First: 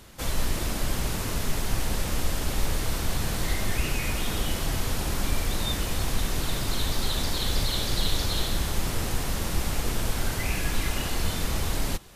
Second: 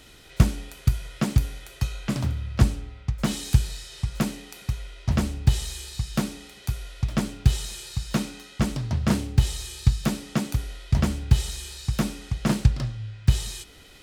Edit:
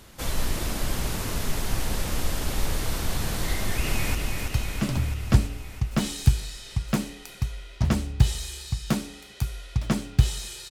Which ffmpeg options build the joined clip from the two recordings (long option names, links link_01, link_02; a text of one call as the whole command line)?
ffmpeg -i cue0.wav -i cue1.wav -filter_complex "[0:a]apad=whole_dur=10.7,atrim=end=10.7,atrim=end=4.152[link_01];[1:a]atrim=start=1.418:end=7.97[link_02];[link_01][link_02]acrossfade=duration=0.004:curve1=hsin:curve2=hsin,asplit=2[link_03][link_04];[link_04]afade=type=in:start_time=3.53:duration=0.01,afade=type=out:start_time=4.15:duration=0.01,aecho=0:1:330|660|990|1320|1650|1980|2310|2640|2970|3300|3630|3960:0.595662|0.416964|0.291874|0.204312|0.143018|0.100113|0.0700791|0.0490553|0.0343387|0.0240371|0.016826|0.0117782[link_05];[link_03][link_05]amix=inputs=2:normalize=0" out.wav